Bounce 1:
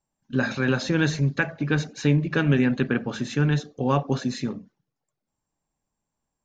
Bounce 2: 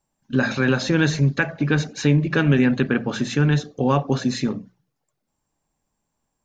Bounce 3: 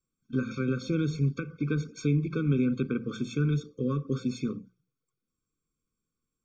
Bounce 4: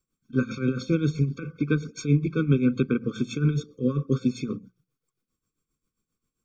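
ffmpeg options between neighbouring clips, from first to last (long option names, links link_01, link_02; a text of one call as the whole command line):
ffmpeg -i in.wav -filter_complex "[0:a]asplit=2[link_01][link_02];[link_02]alimiter=limit=-18dB:level=0:latency=1:release=263,volume=0dB[link_03];[link_01][link_03]amix=inputs=2:normalize=0,bandreject=frequency=60:width_type=h:width=6,bandreject=frequency=120:width_type=h:width=6,bandreject=frequency=180:width_type=h:width=6" out.wav
ffmpeg -i in.wav -filter_complex "[0:a]acrossover=split=480[link_01][link_02];[link_02]acompressor=threshold=-27dB:ratio=6[link_03];[link_01][link_03]amix=inputs=2:normalize=0,afftfilt=real='re*eq(mod(floor(b*sr/1024/530),2),0)':imag='im*eq(mod(floor(b*sr/1024/530),2),0)':win_size=1024:overlap=0.75,volume=-8dB" out.wav
ffmpeg -i in.wav -af "tremolo=f=7.5:d=0.75,volume=7dB" out.wav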